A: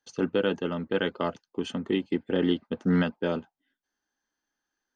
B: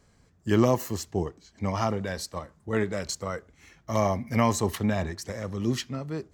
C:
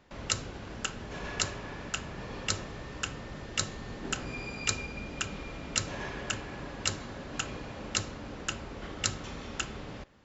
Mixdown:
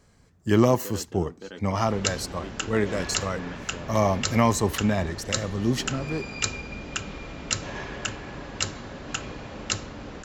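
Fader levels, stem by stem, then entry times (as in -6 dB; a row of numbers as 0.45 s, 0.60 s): -14.0 dB, +2.5 dB, +3.0 dB; 0.50 s, 0.00 s, 1.75 s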